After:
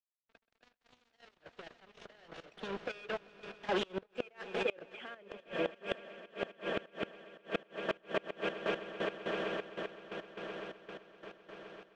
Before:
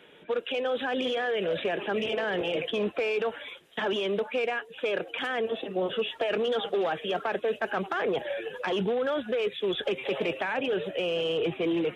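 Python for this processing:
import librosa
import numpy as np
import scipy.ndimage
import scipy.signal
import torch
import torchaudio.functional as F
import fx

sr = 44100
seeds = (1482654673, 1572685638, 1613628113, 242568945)

y = fx.doppler_pass(x, sr, speed_mps=13, closest_m=3.5, pass_at_s=4.98)
y = fx.peak_eq(y, sr, hz=120.0, db=-14.0, octaves=0.25)
y = np.sign(y) * np.maximum(np.abs(y) - 10.0 ** (-47.0 / 20.0), 0.0)
y = fx.pitch_keep_formants(y, sr, semitones=-1.5)
y = fx.echo_swell(y, sr, ms=129, loudest=8, wet_db=-11.5)
y = fx.step_gate(y, sr, bpm=175, pattern='.x..xxxx..x..', floor_db=-12.0, edge_ms=4.5)
y = fx.gate_flip(y, sr, shuts_db=-35.0, range_db=-28)
y = fx.air_absorb(y, sr, metres=120.0)
y = y * librosa.db_to_amplitude(15.5)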